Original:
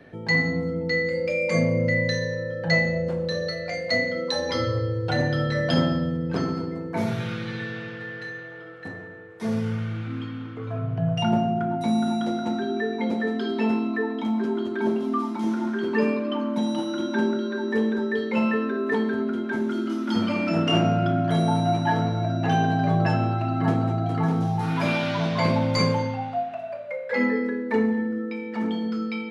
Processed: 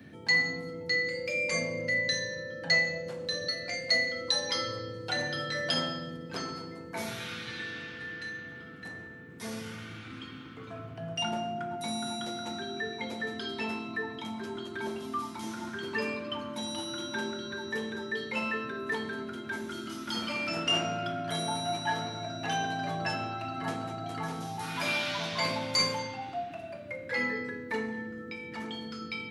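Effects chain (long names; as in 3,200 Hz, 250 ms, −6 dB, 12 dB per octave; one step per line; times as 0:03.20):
spectral tilt +4 dB per octave
noise in a band 84–330 Hz −44 dBFS
level −6.5 dB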